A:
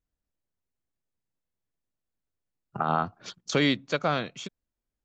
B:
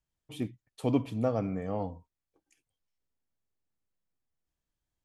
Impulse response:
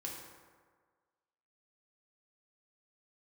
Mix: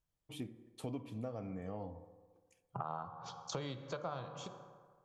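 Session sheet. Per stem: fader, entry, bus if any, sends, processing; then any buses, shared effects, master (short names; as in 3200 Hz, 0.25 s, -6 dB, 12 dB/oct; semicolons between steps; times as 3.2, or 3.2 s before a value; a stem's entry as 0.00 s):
-9.5 dB, 0.00 s, send -6 dB, graphic EQ 125/250/500/1000/2000 Hz +11/-7/+4/+11/-10 dB
-4.5 dB, 0.00 s, send -14 dB, dry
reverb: on, RT60 1.6 s, pre-delay 3 ms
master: de-hum 75.04 Hz, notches 26; compressor 4:1, threshold -40 dBFS, peak gain reduction 16 dB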